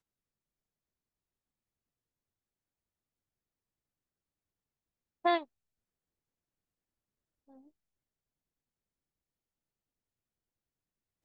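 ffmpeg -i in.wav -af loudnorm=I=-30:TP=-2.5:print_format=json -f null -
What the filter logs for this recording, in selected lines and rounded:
"input_i" : "-32.2",
"input_tp" : "-15.6",
"input_lra" : "0.0",
"input_thresh" : "-45.6",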